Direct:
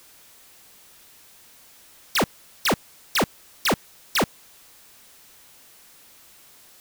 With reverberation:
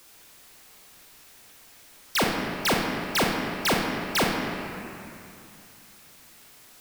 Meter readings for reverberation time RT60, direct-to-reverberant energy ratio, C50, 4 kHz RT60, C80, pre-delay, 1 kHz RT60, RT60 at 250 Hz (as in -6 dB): 2.6 s, -1.0 dB, 0.5 dB, 1.8 s, 2.0 dB, 30 ms, 2.7 s, 2.9 s